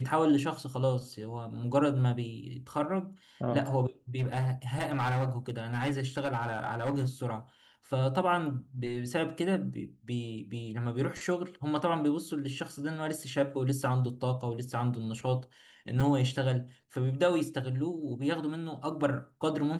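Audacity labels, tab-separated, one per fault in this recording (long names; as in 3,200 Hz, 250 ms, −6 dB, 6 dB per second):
4.180000	7.080000	clipping −26 dBFS
16.000000	16.010000	drop-out 5.1 ms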